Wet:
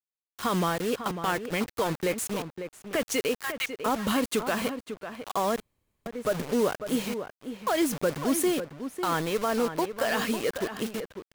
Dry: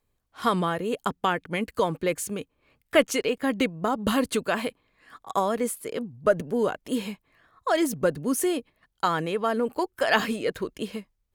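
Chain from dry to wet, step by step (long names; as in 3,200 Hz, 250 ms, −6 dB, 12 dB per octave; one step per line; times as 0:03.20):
one scale factor per block 5 bits
0:03.38–0:03.86: inverse Chebyshev high-pass filter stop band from 370 Hz, stop band 50 dB
brickwall limiter −17 dBFS, peak gain reduction 10.5 dB
bit reduction 6 bits
slap from a distant wall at 94 metres, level −9 dB
0:05.60–0:06.06: fill with room tone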